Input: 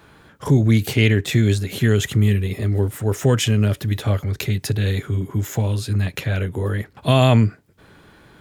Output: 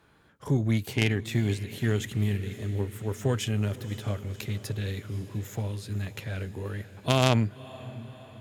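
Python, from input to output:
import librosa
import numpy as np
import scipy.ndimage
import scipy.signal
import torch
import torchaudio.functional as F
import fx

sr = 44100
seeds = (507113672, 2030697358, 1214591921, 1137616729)

y = fx.echo_diffused(x, sr, ms=548, feedback_pct=62, wet_db=-14)
y = fx.cheby_harmonics(y, sr, harmonics=(3, 5, 7), levels_db=(-8, -15, -25), full_scale_db=-1.5)
y = y * librosa.db_to_amplitude(-2.0)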